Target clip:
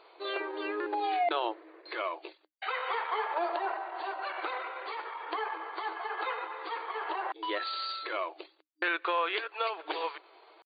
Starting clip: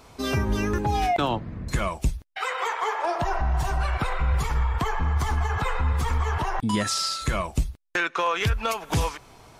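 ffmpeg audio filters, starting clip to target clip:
-af "atempo=0.9,afftfilt=real='re*between(b*sr/4096,310,4700)':imag='im*between(b*sr/4096,310,4700)':win_size=4096:overlap=0.75,volume=0.562"

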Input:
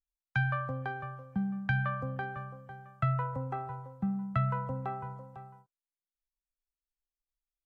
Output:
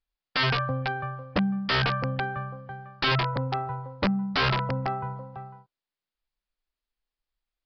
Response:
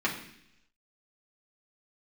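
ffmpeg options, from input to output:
-af "aeval=exprs='(mod(18.8*val(0)+1,2)-1)/18.8':c=same,aresample=11025,aresample=44100,volume=2.37"

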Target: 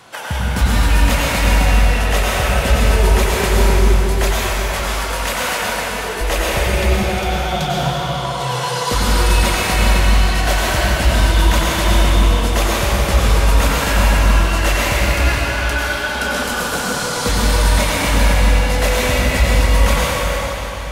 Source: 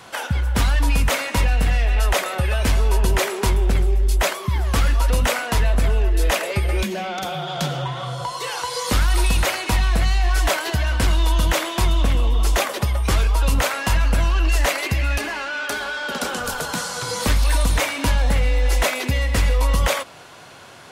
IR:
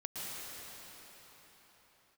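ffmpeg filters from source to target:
-filter_complex "[0:a]asettb=1/sr,asplit=3[s0][s1][s2];[s0]atrim=end=4.244[s3];[s1]atrim=start=4.24:end=6.21,asetpts=PTS-STARTPTS,afade=t=in:d=0.004:c=qsin,afade=t=out:st=1.966:d=0.004:c=qsin,highpass=f=600:p=1[s4];[s2]atrim=start=6.206[s5];[s3][s4]acrossfade=d=0.004:c1=hsin:c2=qsin[s6];[s6][s5]acrossfade=d=0.004:c1=qsin:c2=hsin[s7];[1:a]atrim=start_sample=2205,asetrate=52920,aresample=44100[s8];[s7][s8]afir=irnorm=-1:irlink=0,volume=1.88"

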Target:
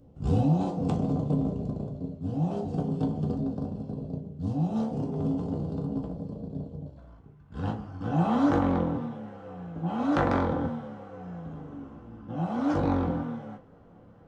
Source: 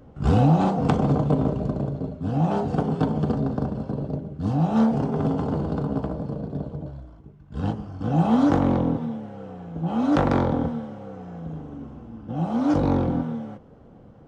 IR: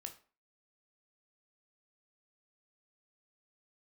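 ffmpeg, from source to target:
-filter_complex "[0:a]asetnsamples=n=441:p=0,asendcmd='6.97 equalizer g 5',equalizer=f=1500:t=o:w=1.7:g=-12.5[s0];[1:a]atrim=start_sample=2205,asetrate=66150,aresample=44100[s1];[s0][s1]afir=irnorm=-1:irlink=0,volume=1.33"

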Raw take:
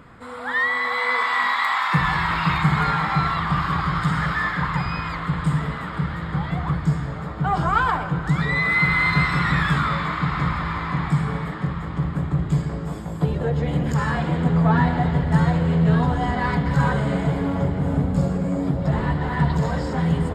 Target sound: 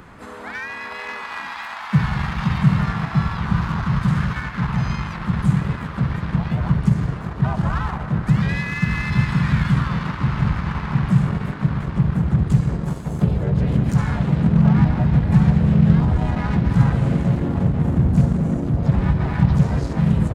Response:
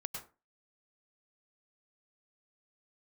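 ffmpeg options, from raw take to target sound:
-filter_complex "[0:a]crystalizer=i=0.5:c=0,acrossover=split=210[s0][s1];[s1]acompressor=threshold=0.01:ratio=2.5[s2];[s0][s2]amix=inputs=2:normalize=0,asplit=3[s3][s4][s5];[s4]asetrate=37084,aresample=44100,atempo=1.18921,volume=0.891[s6];[s5]asetrate=55563,aresample=44100,atempo=0.793701,volume=0.631[s7];[s3][s6][s7]amix=inputs=3:normalize=0,asplit=2[s8][s9];[s9]acrusher=bits=3:mix=0:aa=0.5,volume=0.355[s10];[s8][s10]amix=inputs=2:normalize=0"

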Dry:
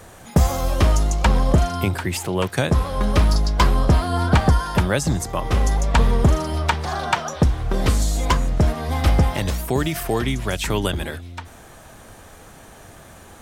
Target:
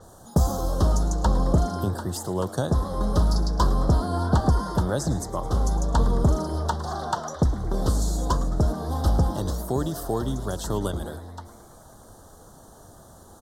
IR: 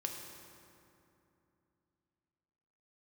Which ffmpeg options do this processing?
-filter_complex "[0:a]asuperstop=centerf=2300:order=4:qfactor=0.85,asplit=7[s0][s1][s2][s3][s4][s5][s6];[s1]adelay=108,afreqshift=130,volume=0.15[s7];[s2]adelay=216,afreqshift=260,volume=0.0923[s8];[s3]adelay=324,afreqshift=390,volume=0.0575[s9];[s4]adelay=432,afreqshift=520,volume=0.0355[s10];[s5]adelay=540,afreqshift=650,volume=0.0221[s11];[s6]adelay=648,afreqshift=780,volume=0.0136[s12];[s0][s7][s8][s9][s10][s11][s12]amix=inputs=7:normalize=0,adynamicequalizer=threshold=0.00794:dfrequency=7800:dqfactor=0.7:tfrequency=7800:tqfactor=0.7:attack=5:release=100:ratio=0.375:range=2:mode=cutabove:tftype=highshelf,volume=0.596"

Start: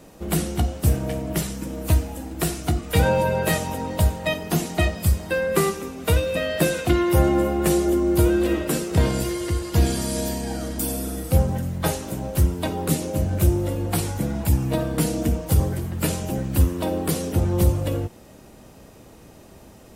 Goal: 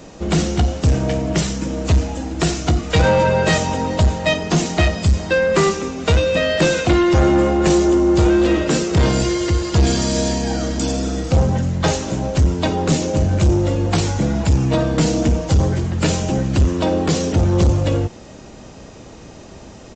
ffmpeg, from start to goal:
-af "aresample=16000,asoftclip=type=tanh:threshold=0.15,aresample=44100,highshelf=f=5000:g=4.5,volume=2.51"

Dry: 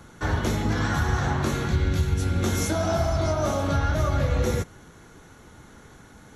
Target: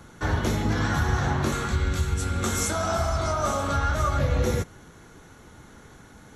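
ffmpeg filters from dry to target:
-filter_complex "[0:a]asettb=1/sr,asplit=3[s0][s1][s2];[s0]atrim=end=1.524[s3];[s1]atrim=start=1.52:end=4.19,asetpts=PTS-STARTPTS,afade=t=in:d=0.004:c=qsin,afade=t=out:st=2.666:d=0.004:c=qsin,equalizer=f=100:t=o:w=0.33:g=-6,equalizer=f=160:t=o:w=0.33:g=-9,equalizer=f=315:t=o:w=0.33:g=-8,equalizer=f=630:t=o:w=0.33:g=-3,equalizer=f=1250:t=o:w=0.33:g=7,equalizer=f=8000:t=o:w=0.33:g=10[s4];[s2]atrim=start=4.186[s5];[s3][s4]acrossfade=d=0.004:c1=hsin:c2=qsin[s6];[s6][s5]acrossfade=d=0.004:c1=qsin:c2=hsin"

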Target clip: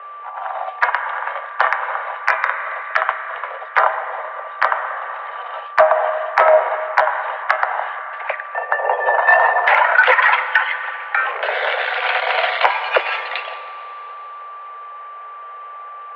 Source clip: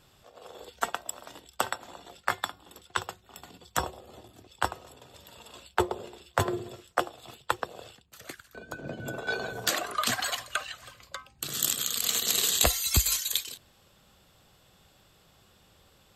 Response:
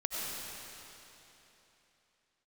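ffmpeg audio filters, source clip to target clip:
-filter_complex "[0:a]asettb=1/sr,asplit=3[s0][s1][s2];[s0]atrim=end=11.174[s3];[s1]atrim=start=11.17:end=12.11,asetpts=PTS-STARTPTS,afade=t=in:d=0.004:c=qsin,afade=t=out:st=0.936:d=0.004:c=qsin,aeval=exprs='val(0)+0.5*0.0168*sgn(val(0))':c=same[s4];[s2]atrim=start=12.106[s5];[s3][s4]acrossfade=d=0.004:c1=hsin:c2=qsin[s6];[s6][s5]acrossfade=d=0.004:c1=qsin:c2=hsin,asplit=2[s7][s8];[1:a]atrim=start_sample=2205[s9];[s8][s9]afir=irnorm=-1:irlink=0,volume=0.15[s10];[s7][s10]amix=inputs=2:normalize=0,aeval=exprs='val(0)+0.00251*sin(2*PI*900*n/s)':c=same,flanger=delay=7.3:depth=1:regen=-83:speed=0.13:shape=sinusoidal,highpass=f=240:t=q:w=0.5412,highpass=f=240:t=q:w=1.307,lowpass=f=2200:t=q:w=0.5176,lowpass=f=2200:t=q:w=0.7071,lowpass=f=2200:t=q:w=1.932,afreqshift=270,acontrast=54,asoftclip=type=tanh:threshold=0.355,alimiter=level_in=10:limit=0.891:release=50:level=0:latency=1,volume=0.891"

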